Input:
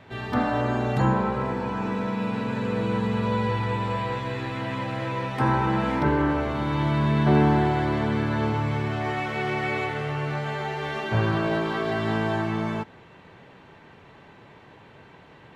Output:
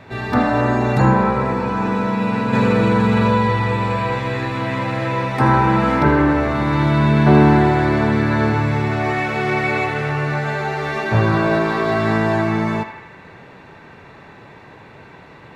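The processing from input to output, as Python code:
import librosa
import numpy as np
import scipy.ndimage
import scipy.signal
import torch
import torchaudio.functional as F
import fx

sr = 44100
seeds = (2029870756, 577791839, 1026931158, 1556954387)

p1 = fx.notch(x, sr, hz=3100.0, q=8.0)
p2 = p1 + fx.echo_banded(p1, sr, ms=79, feedback_pct=73, hz=1800.0, wet_db=-7.0, dry=0)
p3 = fx.env_flatten(p2, sr, amount_pct=100, at=(2.53, 3.38))
y = p3 * 10.0 ** (7.5 / 20.0)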